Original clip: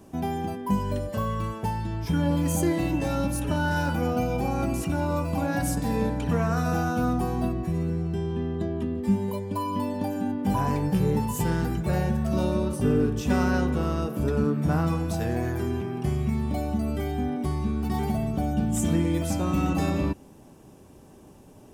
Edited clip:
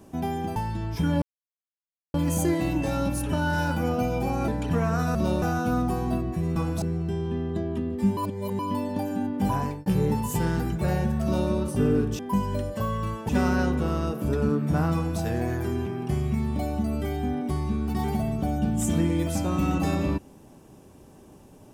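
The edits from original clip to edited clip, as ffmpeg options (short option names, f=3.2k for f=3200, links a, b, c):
-filter_complex "[0:a]asplit=13[a][b][c][d][e][f][g][h][i][j][k][l][m];[a]atrim=end=0.562[n];[b]atrim=start=1.658:end=2.32,asetpts=PTS-STARTPTS,afade=t=out:st=0.658:d=0.004:c=hsin,apad=pad_dur=0.92[o];[c]atrim=start=2.32:end=4.662,asetpts=PTS-STARTPTS,afade=t=in:d=0.004:c=hsin[p];[d]atrim=start=6.058:end=6.732[q];[e]atrim=start=12.278:end=12.552[r];[f]atrim=start=6.728:end=7.872[s];[g]atrim=start=14.888:end=15.152[t];[h]atrim=start=7.868:end=9.222[u];[i]atrim=start=9.218:end=9.642,asetpts=PTS-STARTPTS,areverse[v];[j]atrim=start=9.638:end=10.91,asetpts=PTS-STARTPTS,afade=t=out:st=0.852:d=0.42:c=qsin[w];[k]atrim=start=10.91:end=13.242,asetpts=PTS-STARTPTS,afade=t=in:d=0.004:c=hsin[x];[l]atrim=start=0.558:end=1.662[y];[m]atrim=start=13.238[z];[o][p]concat=n=2:v=0:a=1[aa];[n][aa]acrossfade=d=0.004:c1=hsin:c2=hsin[ab];[ab][q]acrossfade=d=0.004:c1=hsin:c2=hsin[ac];[ac][r]acrossfade=d=0.004:c1=hsin:c2=hsin[ad];[ad][s]acrossfade=d=0.004:c1=hsin:c2=hsin[ae];[ae][t]acrossfade=d=0.004:c1=hsin:c2=hsin[af];[af][u]acrossfade=d=0.004:c1=hsin:c2=hsin[ag];[ag][v]acrossfade=d=0.004:c1=hsin:c2=hsin[ah];[w][x]concat=n=2:v=0:a=1[ai];[ah][ai]acrossfade=d=0.004:c1=hsin:c2=hsin[aj];[aj][y]acrossfade=d=0.004:c1=hsin:c2=hsin[ak];[ak][z]acrossfade=d=0.004:c1=hsin:c2=hsin"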